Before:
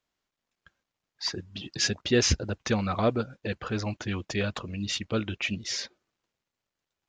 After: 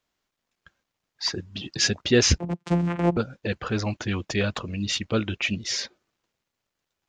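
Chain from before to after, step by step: 2.38–3.17 vocoder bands 4, saw 173 Hz; gain +4 dB

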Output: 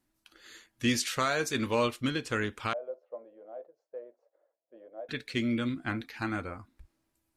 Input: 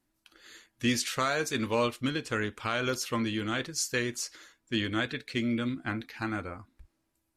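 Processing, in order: 2.73–5.09 Butterworth band-pass 600 Hz, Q 3.2

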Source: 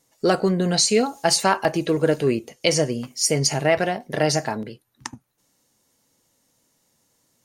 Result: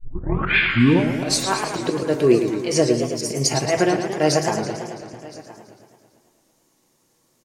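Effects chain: tape start at the beginning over 1.42 s; small resonant body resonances 360/1100/2400 Hz, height 9 dB, ringing for 65 ms; spectral repair 0.6–0.97, 1200–6700 Hz both; auto swell 0.122 s; bell 570 Hz +2 dB 2.4 oct; echo 1.019 s -21 dB; reverb RT60 0.45 s, pre-delay 4 ms, DRR 10.5 dB; warbling echo 0.111 s, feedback 70%, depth 185 cents, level -8 dB

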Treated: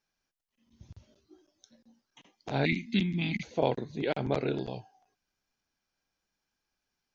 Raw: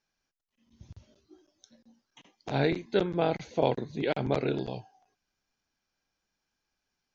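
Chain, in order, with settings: 2.65–3.43 EQ curve 140 Hz 0 dB, 230 Hz +14 dB, 520 Hz -29 dB, 880 Hz -17 dB, 1400 Hz -23 dB, 2100 Hz +11 dB, 4300 Hz +3 dB; gain -1.5 dB

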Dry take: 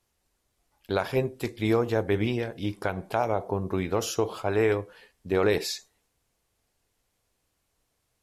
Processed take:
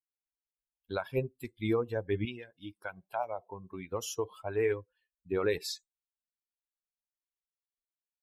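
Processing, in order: per-bin expansion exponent 2; 2.25–3.92 low shelf 320 Hz -12 dB; gain -3 dB

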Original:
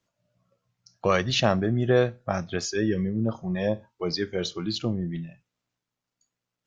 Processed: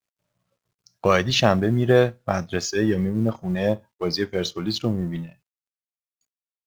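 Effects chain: G.711 law mismatch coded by A; gain +4.5 dB

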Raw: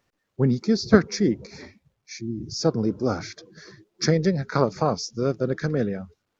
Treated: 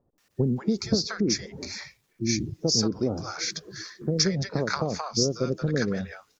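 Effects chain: high shelf 4500 Hz +10.5 dB; compressor 10:1, threshold -25 dBFS, peak gain reduction 16.5 dB; bands offset in time lows, highs 0.18 s, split 780 Hz; gain +4.5 dB

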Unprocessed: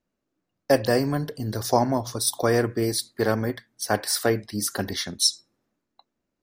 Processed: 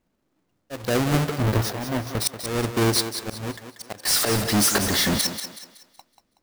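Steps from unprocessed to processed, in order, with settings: half-waves squared off; 1.26–2.26 bell 7400 Hz -6.5 dB 1.9 oct; auto swell 0.657 s; 4.05–5.27 power-law curve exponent 0.35; thinning echo 0.187 s, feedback 37%, high-pass 200 Hz, level -9 dB; gain +3 dB

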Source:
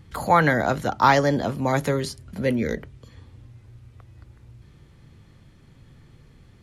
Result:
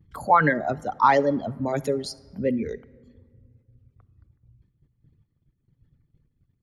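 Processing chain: formant sharpening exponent 1.5; reverb removal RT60 0.82 s; gate -51 dBFS, range -13 dB; shoebox room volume 2700 m³, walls mixed, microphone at 0.36 m; spectral noise reduction 7 dB

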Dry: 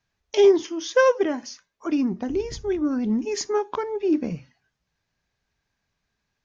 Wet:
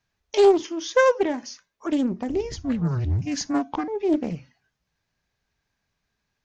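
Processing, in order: 2.56–3.88 frequency shift -130 Hz; Doppler distortion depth 0.37 ms

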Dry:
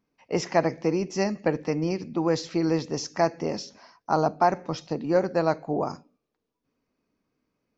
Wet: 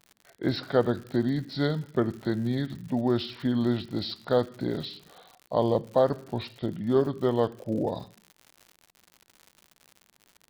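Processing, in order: speed mistake 45 rpm record played at 33 rpm; crackle 120/s -37 dBFS; gain -1.5 dB

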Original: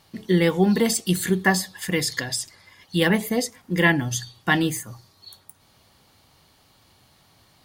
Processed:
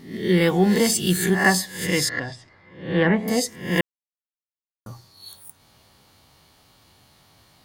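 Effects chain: spectral swells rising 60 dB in 0.50 s; 2.09–3.28 LPF 1800 Hz 12 dB/oct; 3.81–4.86 mute

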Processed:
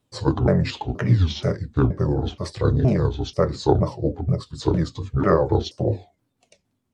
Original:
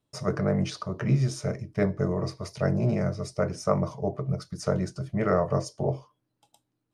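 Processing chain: repeated pitch sweeps -8.5 st, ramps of 0.476 s; record warp 33 1/3 rpm, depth 160 cents; gain +7 dB

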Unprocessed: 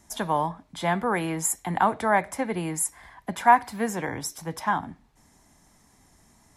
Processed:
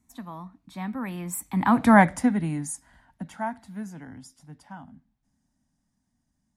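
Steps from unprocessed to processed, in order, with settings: Doppler pass-by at 1.96, 28 m/s, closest 4.3 m; resonant low shelf 320 Hz +6.5 dB, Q 3; gain +5.5 dB

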